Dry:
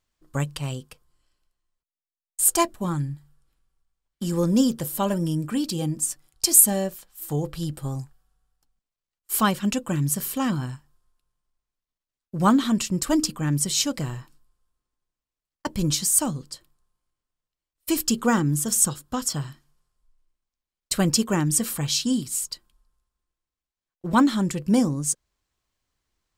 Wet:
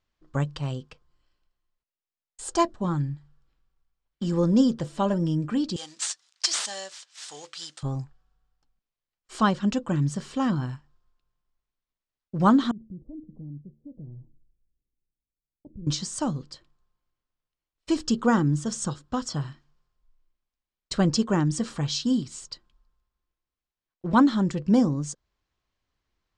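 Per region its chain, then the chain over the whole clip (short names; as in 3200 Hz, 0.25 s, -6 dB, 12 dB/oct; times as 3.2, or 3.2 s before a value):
5.76–7.83 CVSD 64 kbps + HPF 1400 Hz 6 dB/oct + tilt +4.5 dB/oct
12.71–15.87 compressor 3:1, threshold -39 dBFS + Gaussian blur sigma 20 samples + de-hum 111.5 Hz, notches 3
whole clip: dynamic EQ 2400 Hz, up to -7 dB, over -47 dBFS, Q 2; Bessel low-pass 4300 Hz, order 8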